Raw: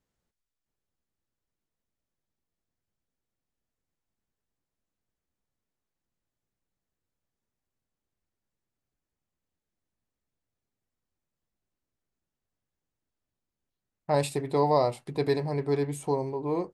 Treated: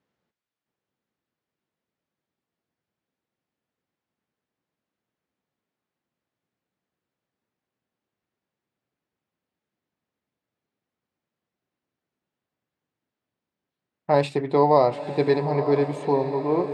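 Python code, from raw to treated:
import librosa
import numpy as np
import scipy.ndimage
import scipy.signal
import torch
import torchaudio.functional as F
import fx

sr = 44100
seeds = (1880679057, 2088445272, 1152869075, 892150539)

y = fx.bandpass_edges(x, sr, low_hz=150.0, high_hz=3500.0)
y = fx.echo_diffused(y, sr, ms=914, feedback_pct=56, wet_db=-11.0)
y = F.gain(torch.from_numpy(y), 6.0).numpy()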